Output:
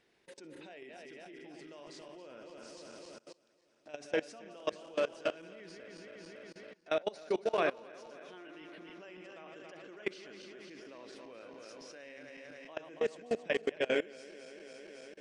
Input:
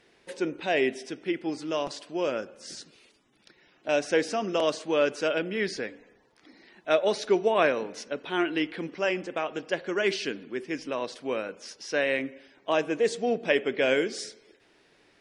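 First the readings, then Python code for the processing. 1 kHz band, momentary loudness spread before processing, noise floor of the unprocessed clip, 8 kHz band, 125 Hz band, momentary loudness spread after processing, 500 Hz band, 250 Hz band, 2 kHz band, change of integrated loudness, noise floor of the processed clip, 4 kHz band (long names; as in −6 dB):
−12.0 dB, 13 LU, −63 dBFS, −15.0 dB, −14.0 dB, 17 LU, −10.5 dB, −14.0 dB, −12.0 dB, −11.5 dB, −72 dBFS, −12.5 dB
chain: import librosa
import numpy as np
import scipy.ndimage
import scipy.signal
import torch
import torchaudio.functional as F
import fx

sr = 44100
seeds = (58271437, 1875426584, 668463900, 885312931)

y = fx.reverse_delay_fb(x, sr, ms=139, feedback_pct=78, wet_db=-6.5)
y = fx.level_steps(y, sr, step_db=22)
y = y * 10.0 ** (-6.5 / 20.0)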